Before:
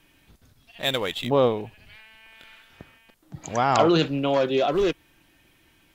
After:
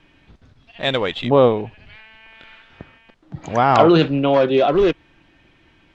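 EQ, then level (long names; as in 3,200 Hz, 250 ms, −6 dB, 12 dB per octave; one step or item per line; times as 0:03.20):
high-frequency loss of the air 110 metres
high-shelf EQ 6,600 Hz −10 dB
+7.0 dB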